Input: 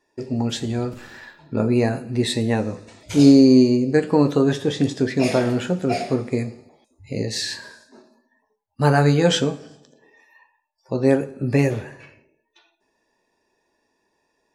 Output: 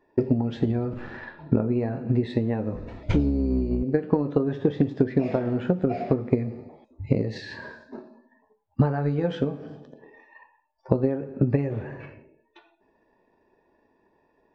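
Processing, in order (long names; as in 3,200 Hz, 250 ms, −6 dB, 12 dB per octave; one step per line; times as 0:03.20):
0:02.74–0:03.83: sub-octave generator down 2 octaves, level −1 dB
downward compressor 8 to 1, threshold −29 dBFS, peak gain reduction 22.5 dB
transient designer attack +7 dB, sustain +1 dB
head-to-tape spacing loss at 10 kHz 44 dB
level +7.5 dB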